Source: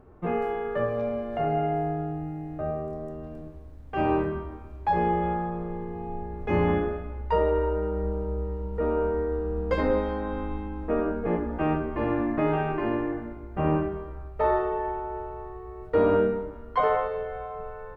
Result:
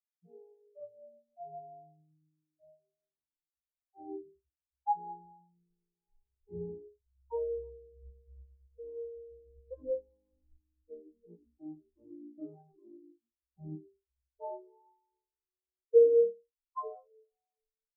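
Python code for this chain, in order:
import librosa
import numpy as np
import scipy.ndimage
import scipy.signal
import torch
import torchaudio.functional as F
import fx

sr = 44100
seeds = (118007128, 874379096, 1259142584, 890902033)

y = fx.air_absorb(x, sr, metres=290.0)
y = fx.spectral_expand(y, sr, expansion=4.0)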